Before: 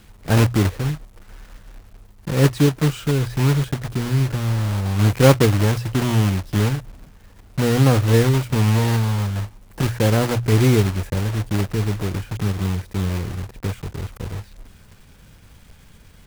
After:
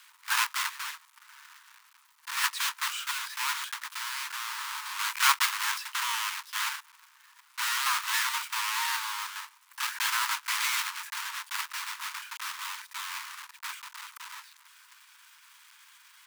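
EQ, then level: steep high-pass 920 Hz 96 dB/oct; 0.0 dB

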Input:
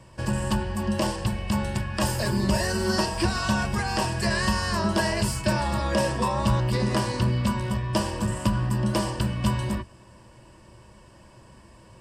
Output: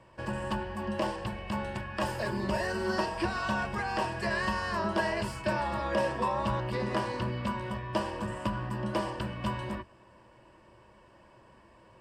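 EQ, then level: tone controls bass -9 dB, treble -14 dB; -3.0 dB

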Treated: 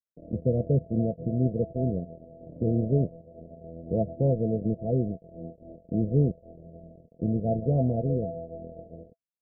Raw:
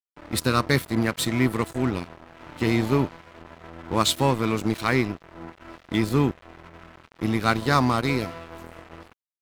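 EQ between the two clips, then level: dynamic EQ 260 Hz, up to -5 dB, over -33 dBFS, Q 1.2; rippled Chebyshev low-pass 690 Hz, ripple 9 dB; +5.5 dB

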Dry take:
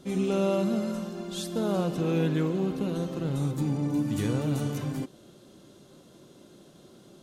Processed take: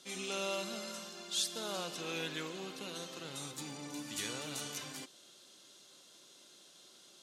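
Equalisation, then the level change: band-pass 5400 Hz, Q 0.69; +5.0 dB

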